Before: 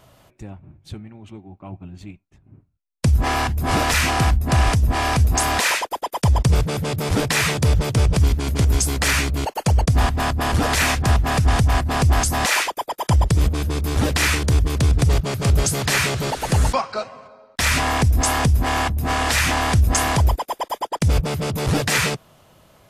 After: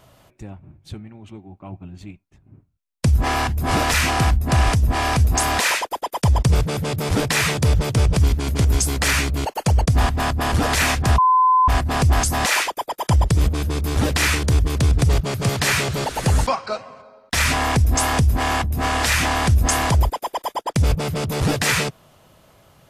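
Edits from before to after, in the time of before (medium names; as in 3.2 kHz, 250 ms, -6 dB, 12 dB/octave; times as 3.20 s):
11.18–11.68 s: bleep 1.02 kHz -11.5 dBFS
15.49–15.75 s: delete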